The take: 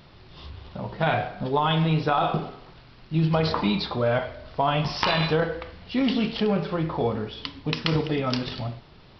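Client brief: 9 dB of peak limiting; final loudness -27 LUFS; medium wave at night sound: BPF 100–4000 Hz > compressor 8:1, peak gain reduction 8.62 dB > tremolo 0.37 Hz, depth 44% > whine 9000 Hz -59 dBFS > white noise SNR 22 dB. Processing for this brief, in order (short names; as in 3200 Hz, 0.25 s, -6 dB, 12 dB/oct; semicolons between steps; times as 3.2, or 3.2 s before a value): limiter -15.5 dBFS; BPF 100–4000 Hz; compressor 8:1, threshold -28 dBFS; tremolo 0.37 Hz, depth 44%; whine 9000 Hz -59 dBFS; white noise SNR 22 dB; gain +8.5 dB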